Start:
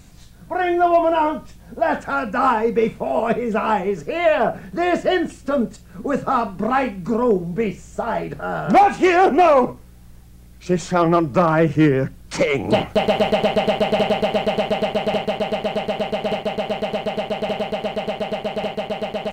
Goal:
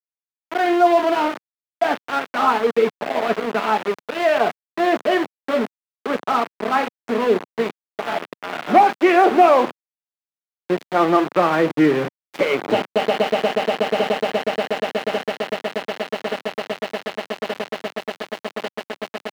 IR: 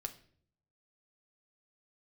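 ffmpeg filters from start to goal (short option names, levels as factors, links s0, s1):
-filter_complex "[0:a]asplit=2[s0][s1];[1:a]atrim=start_sample=2205,afade=t=out:st=0.39:d=0.01,atrim=end_sample=17640[s2];[s1][s2]afir=irnorm=-1:irlink=0,volume=1.58[s3];[s0][s3]amix=inputs=2:normalize=0,aeval=exprs='val(0)*gte(abs(val(0)),0.211)':c=same,acrossover=split=180 3900:gain=0.0708 1 0.178[s4][s5][s6];[s4][s5][s6]amix=inputs=3:normalize=0,volume=0.473"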